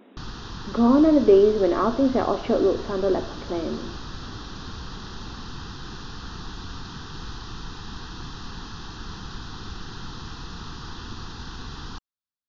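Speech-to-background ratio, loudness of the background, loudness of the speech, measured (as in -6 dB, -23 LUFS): 17.0 dB, -38.0 LUFS, -21.0 LUFS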